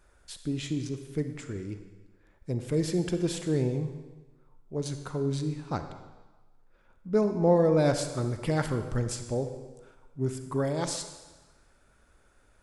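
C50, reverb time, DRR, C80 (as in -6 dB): 8.5 dB, 1.3 s, 7.5 dB, 10.0 dB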